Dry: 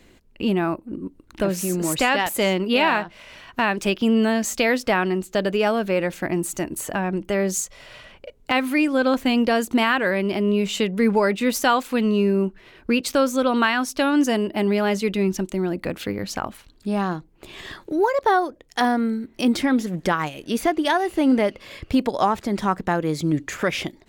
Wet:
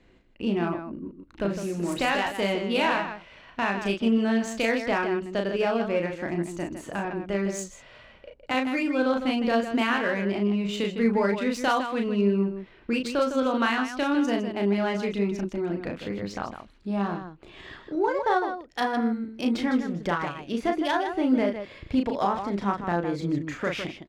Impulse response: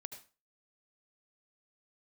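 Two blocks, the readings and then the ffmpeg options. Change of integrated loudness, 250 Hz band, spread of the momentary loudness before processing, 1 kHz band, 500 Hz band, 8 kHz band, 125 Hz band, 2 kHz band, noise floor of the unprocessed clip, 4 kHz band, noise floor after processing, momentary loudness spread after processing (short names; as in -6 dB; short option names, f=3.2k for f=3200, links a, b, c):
-5.0 dB, -4.5 dB, 9 LU, -5.0 dB, -4.5 dB, -12.5 dB, -4.5 dB, -5.0 dB, -54 dBFS, -6.0 dB, -54 dBFS, 9 LU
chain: -af "aecho=1:1:34.99|157.4:0.631|0.398,adynamicsmooth=sensitivity=1.5:basefreq=4.1k,volume=-6.5dB"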